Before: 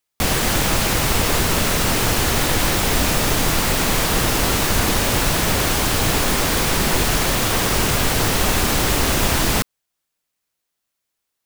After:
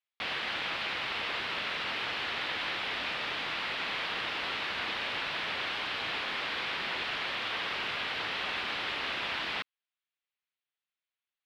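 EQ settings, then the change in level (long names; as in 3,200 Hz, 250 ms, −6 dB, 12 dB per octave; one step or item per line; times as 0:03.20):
resonant band-pass 3,500 Hz, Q 1.2
high-frequency loss of the air 410 metres
0.0 dB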